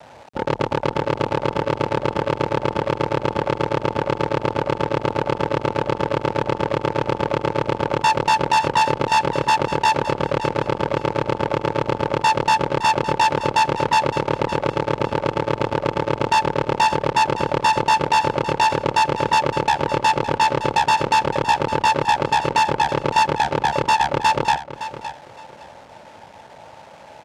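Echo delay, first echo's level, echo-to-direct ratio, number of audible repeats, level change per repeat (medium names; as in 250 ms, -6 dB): 563 ms, -12.5 dB, -12.5 dB, 2, -13.0 dB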